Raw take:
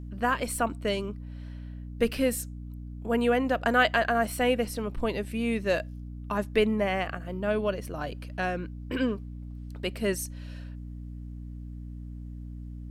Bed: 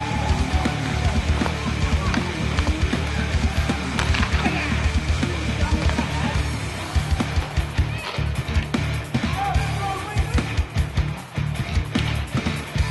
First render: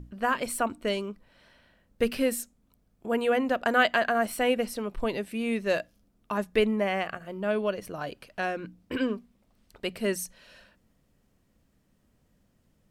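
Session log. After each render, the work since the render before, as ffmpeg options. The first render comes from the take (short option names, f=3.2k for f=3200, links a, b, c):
-af "bandreject=f=60:t=h:w=6,bandreject=f=120:t=h:w=6,bandreject=f=180:t=h:w=6,bandreject=f=240:t=h:w=6,bandreject=f=300:t=h:w=6"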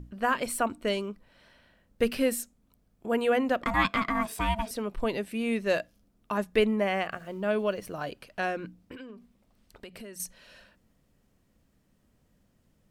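-filter_complex "[0:a]asettb=1/sr,asplit=3[a][b][c];[a]atrim=end=3.634[d];[b]atrim=start=3.63:end=4.71,asetpts=PTS-STARTPTS,afade=t=in:d=0.004:c=qsin,afade=t=out:st=1.076:d=0.004:c=qsin,aeval=exprs='val(0)*sin(2*PI*440*n/s)':c=same[e];[c]atrim=start=4.706[f];[d][e]acrossfade=d=0.004:c1=hsin:c2=qsin[g];[g][f]acrossfade=d=0.004:c1=qsin:c2=hsin,asettb=1/sr,asplit=3[h][i][j];[h]atrim=end=7.124[k];[i]atrim=start=7.12:end=8.08,asetpts=PTS-STARTPTS,afade=t=in:d=0.004:c=qsin,afade=t=out:st=0.956:d=0.004:c=qsin,aeval=exprs='val(0)*gte(abs(val(0)),0.00158)':c=same[l];[j]atrim=start=8.076[m];[k][l]acrossfade=d=0.004:c1=hsin:c2=qsin[n];[n][m]acrossfade=d=0.004:c1=qsin:c2=hsin,asettb=1/sr,asplit=3[o][p][q];[o]atrim=end=8.814[r];[p]atrim=start=8.81:end=10.2,asetpts=PTS-STARTPTS,afade=t=in:d=0.004:c=qsin,afade=t=out:st=1.386:d=0.004:c=qsin,acompressor=threshold=-40dB:ratio=12:attack=3.2:release=140:knee=1:detection=peak[s];[q]atrim=start=10.196[t];[r][s]acrossfade=d=0.004:c1=hsin:c2=qsin[u];[u][t]acrossfade=d=0.004:c1=qsin:c2=hsin"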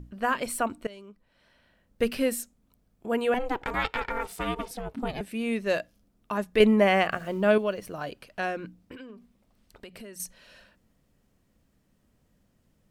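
-filter_complex "[0:a]asettb=1/sr,asplit=3[a][b][c];[a]atrim=end=3.344[d];[b]atrim=start=3.34:end=5.21,asetpts=PTS-STARTPTS,afade=t=in:d=0.004:c=qsin,afade=t=out:st=1.866:d=0.004:c=qsin,aeval=exprs='val(0)*sin(2*PI*250*n/s)':c=same[e];[c]atrim=start=5.206[f];[d][e]acrossfade=d=0.004:c1=hsin:c2=qsin[g];[g][f]acrossfade=d=0.004:c1=qsin:c2=hsin,asettb=1/sr,asplit=3[h][i][j];[h]atrim=end=6.604[k];[i]atrim=start=6.6:end=7.58,asetpts=PTS-STARTPTS,afade=t=in:d=0.004:c=qsin,afade=t=out:st=0.976:d=0.004:c=qsin,acontrast=72[l];[j]atrim=start=7.576[m];[k][l]acrossfade=d=0.004:c1=hsin:c2=qsin[n];[n][m]acrossfade=d=0.004:c1=qsin:c2=hsin,asplit=2[o][p];[o]atrim=end=0.87,asetpts=PTS-STARTPTS,afade=t=out:st=0.866:d=0.004:c=hsin:silence=0.0944061[q];[p]atrim=start=0.87,asetpts=PTS-STARTPTS,afade=t=in:d=1.16:silence=0.0944061[r];[q][r]concat=n=2:v=0:a=1"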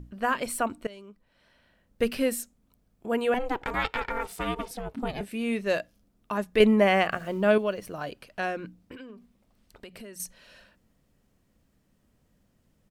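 -filter_complex "[0:a]asplit=3[a][b][c];[a]afade=t=out:st=5.21:d=0.02[d];[b]asplit=2[e][f];[f]adelay=25,volume=-13dB[g];[e][g]amix=inputs=2:normalize=0,afade=t=in:st=5.21:d=0.02,afade=t=out:st=5.61:d=0.02[h];[c]afade=t=in:st=5.61:d=0.02[i];[d][h][i]amix=inputs=3:normalize=0"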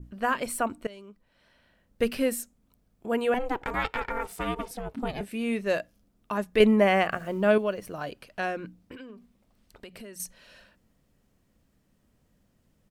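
-af "adynamicequalizer=threshold=0.00398:dfrequency=3900:dqfactor=1.1:tfrequency=3900:tqfactor=1.1:attack=5:release=100:ratio=0.375:range=2.5:mode=cutabove:tftype=bell"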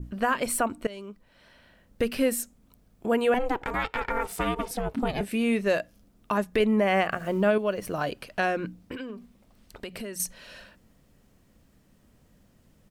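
-filter_complex "[0:a]asplit=2[a][b];[b]acompressor=threshold=-32dB:ratio=6,volume=2dB[c];[a][c]amix=inputs=2:normalize=0,alimiter=limit=-13.5dB:level=0:latency=1:release=291"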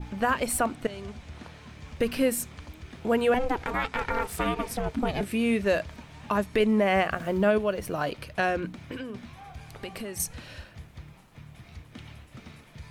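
-filter_complex "[1:a]volume=-22.5dB[a];[0:a][a]amix=inputs=2:normalize=0"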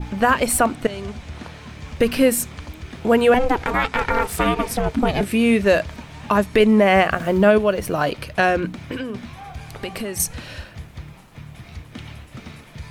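-af "volume=8.5dB"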